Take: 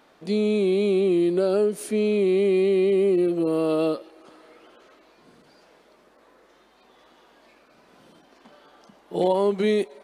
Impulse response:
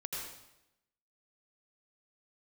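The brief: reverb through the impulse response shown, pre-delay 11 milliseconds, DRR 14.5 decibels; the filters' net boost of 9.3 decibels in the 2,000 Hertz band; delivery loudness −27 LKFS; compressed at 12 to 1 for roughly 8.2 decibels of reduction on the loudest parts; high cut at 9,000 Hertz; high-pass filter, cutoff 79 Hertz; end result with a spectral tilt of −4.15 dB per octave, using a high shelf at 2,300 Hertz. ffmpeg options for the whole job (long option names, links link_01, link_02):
-filter_complex "[0:a]highpass=79,lowpass=9000,equalizer=frequency=2000:width_type=o:gain=7,highshelf=frequency=2300:gain=7.5,acompressor=threshold=-25dB:ratio=12,asplit=2[link_01][link_02];[1:a]atrim=start_sample=2205,adelay=11[link_03];[link_02][link_03]afir=irnorm=-1:irlink=0,volume=-15.5dB[link_04];[link_01][link_04]amix=inputs=2:normalize=0,volume=2dB"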